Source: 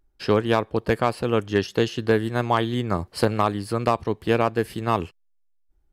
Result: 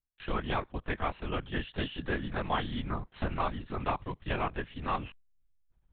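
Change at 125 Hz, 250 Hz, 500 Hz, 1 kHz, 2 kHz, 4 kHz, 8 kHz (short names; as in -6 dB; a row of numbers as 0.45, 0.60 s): -10.5 dB, -12.5 dB, -15.5 dB, -9.0 dB, -7.5 dB, -8.5 dB, under -35 dB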